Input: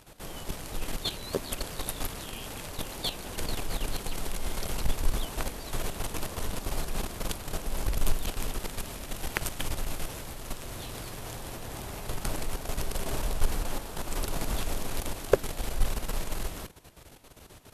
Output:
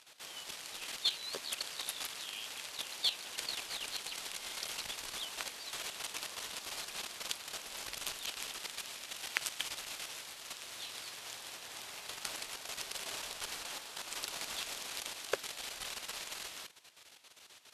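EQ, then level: band-pass filter 4 kHz, Q 0.74; +1.5 dB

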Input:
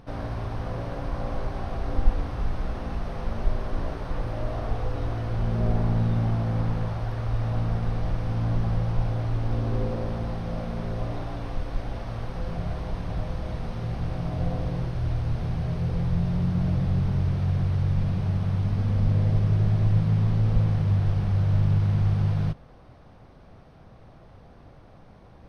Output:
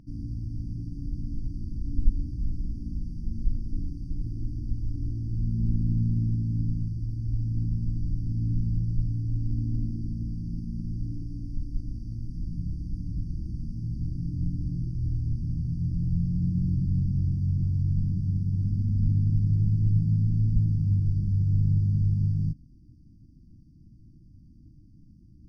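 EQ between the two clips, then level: brick-wall FIR band-stop 340–4500 Hz; treble shelf 4.1 kHz -10.5 dB; -1.5 dB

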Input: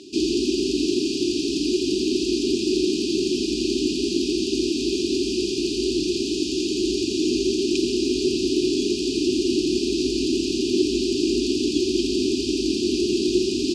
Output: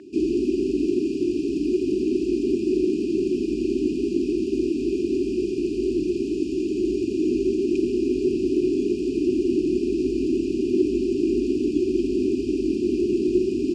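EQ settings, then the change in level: resonant high shelf 2.5 kHz -13.5 dB, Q 3; band-stop 6.2 kHz, Q 23; 0.0 dB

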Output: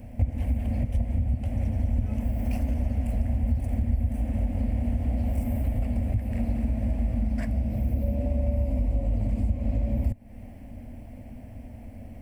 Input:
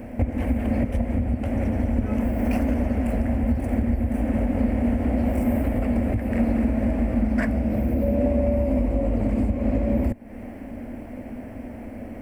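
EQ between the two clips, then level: FFT filter 130 Hz 0 dB, 370 Hz -17 dB, 710 Hz -9 dB, 1.4 kHz -17 dB, 3.4 kHz -4 dB; 0.0 dB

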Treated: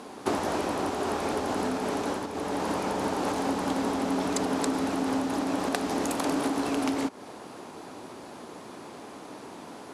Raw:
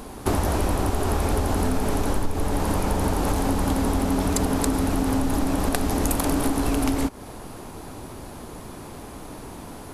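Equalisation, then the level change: band-pass 240–7200 Hz; -2.0 dB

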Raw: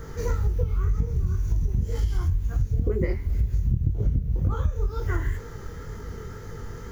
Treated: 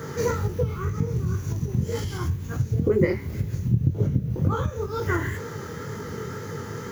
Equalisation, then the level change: high-pass 110 Hz 24 dB/octave; band-stop 710 Hz, Q 14; +7.5 dB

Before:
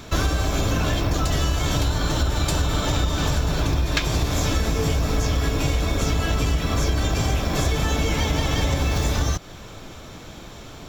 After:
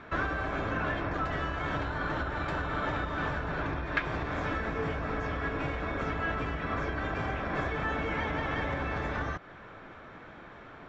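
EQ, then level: resonant low-pass 1.7 kHz, resonance Q 2.2; bass shelf 130 Hz -11.5 dB; -7.0 dB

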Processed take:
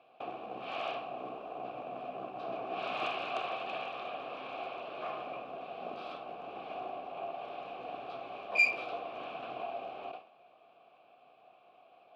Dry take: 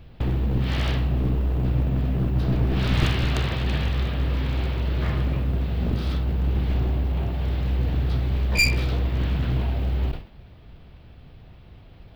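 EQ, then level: vowel filter a; high-pass 290 Hz 12 dB/octave; +6.0 dB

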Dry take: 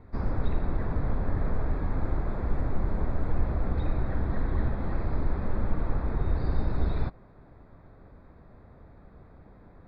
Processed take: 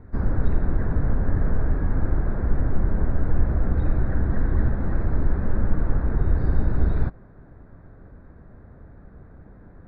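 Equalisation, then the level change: tilt shelf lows +7.5 dB, about 860 Hz; peaking EQ 1.6 kHz +11.5 dB 0.62 oct; -1.0 dB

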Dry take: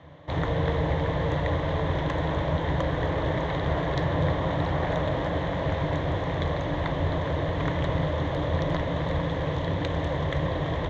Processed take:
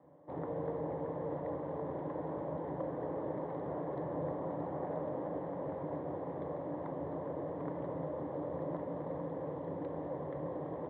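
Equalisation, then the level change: Butterworth band-pass 420 Hz, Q 0.64; band-stop 660 Hz, Q 12; -8.0 dB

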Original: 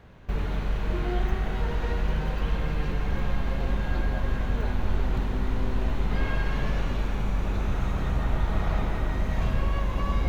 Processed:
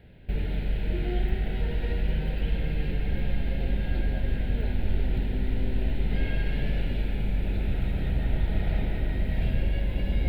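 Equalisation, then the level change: static phaser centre 2.7 kHz, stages 4; 0.0 dB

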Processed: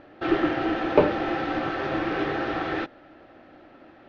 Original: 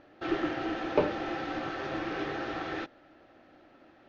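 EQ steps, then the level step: distance through air 130 m; +8.0 dB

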